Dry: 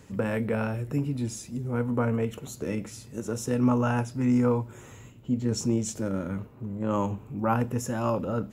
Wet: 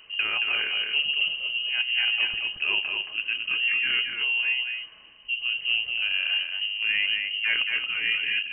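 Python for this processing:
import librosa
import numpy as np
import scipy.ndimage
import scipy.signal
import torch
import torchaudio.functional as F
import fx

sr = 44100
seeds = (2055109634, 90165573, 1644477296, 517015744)

p1 = fx.rider(x, sr, range_db=5, speed_s=0.5)
p2 = p1 + fx.echo_single(p1, sr, ms=224, db=-4.5, dry=0)
y = fx.freq_invert(p2, sr, carrier_hz=3000)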